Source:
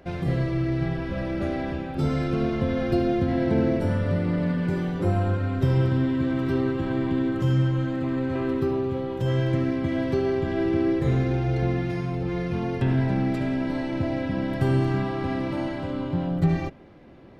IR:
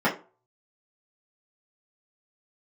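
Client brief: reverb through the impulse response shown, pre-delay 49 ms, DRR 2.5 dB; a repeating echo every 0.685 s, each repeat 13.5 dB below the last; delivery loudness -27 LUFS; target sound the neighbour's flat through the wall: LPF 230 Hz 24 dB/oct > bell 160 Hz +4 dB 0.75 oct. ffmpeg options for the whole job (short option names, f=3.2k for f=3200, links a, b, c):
-filter_complex "[0:a]aecho=1:1:685|1370:0.211|0.0444,asplit=2[a][b];[1:a]atrim=start_sample=2205,adelay=49[c];[b][c]afir=irnorm=-1:irlink=0,volume=-18.5dB[d];[a][d]amix=inputs=2:normalize=0,lowpass=f=230:w=0.5412,lowpass=f=230:w=1.3066,equalizer=f=160:t=o:w=0.75:g=4,volume=-4dB"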